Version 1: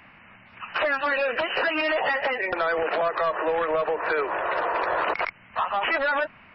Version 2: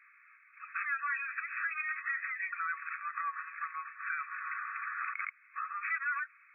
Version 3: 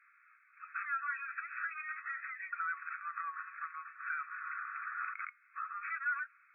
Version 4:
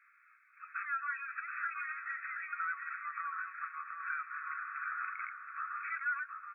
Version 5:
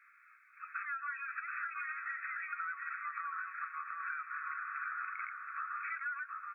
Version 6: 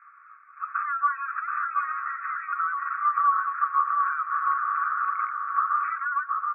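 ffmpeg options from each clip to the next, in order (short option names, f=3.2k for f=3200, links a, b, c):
-af "afftfilt=real='re*between(b*sr/4096,1100,2600)':imag='im*between(b*sr/4096,1100,2600)':win_size=4096:overlap=0.75,volume=-8dB"
-af "equalizer=f=1.4k:t=o:w=0.37:g=10,flanger=delay=2.9:depth=1.6:regen=90:speed=0.44:shape=sinusoidal,volume=-4dB"
-filter_complex "[0:a]asplit=2[a][b];[b]adelay=726,lowpass=f=2.2k:p=1,volume=-4dB,asplit=2[c][d];[d]adelay=726,lowpass=f=2.2k:p=1,volume=0.3,asplit=2[e][f];[f]adelay=726,lowpass=f=2.2k:p=1,volume=0.3,asplit=2[g][h];[h]adelay=726,lowpass=f=2.2k:p=1,volume=0.3[i];[a][c][e][g][i]amix=inputs=5:normalize=0"
-af "acompressor=threshold=-39dB:ratio=6,volume=2.5dB"
-af "lowpass=f=1.1k:t=q:w=6.4,volume=7dB"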